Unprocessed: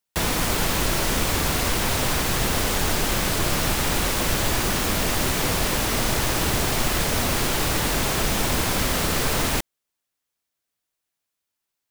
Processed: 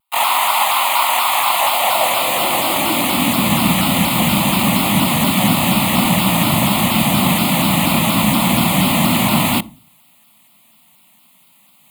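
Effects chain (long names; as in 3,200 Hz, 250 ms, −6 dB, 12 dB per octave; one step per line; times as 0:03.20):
loose part that buzzes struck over −32 dBFS, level −32 dBFS
pitch-shifted copies added +7 semitones 0 dB, +12 semitones −11 dB
reversed playback
upward compression, threshold −36 dBFS
reversed playback
low-shelf EQ 320 Hz +3 dB
on a send at −22 dB: convolution reverb RT60 0.40 s, pre-delay 46 ms
on the sum: high-pass filter sweep 910 Hz → 200 Hz, 0:01.40–0:03.56
phaser with its sweep stopped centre 1,600 Hz, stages 6
pitch modulation by a square or saw wave saw down 4.2 Hz, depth 100 cents
level +7 dB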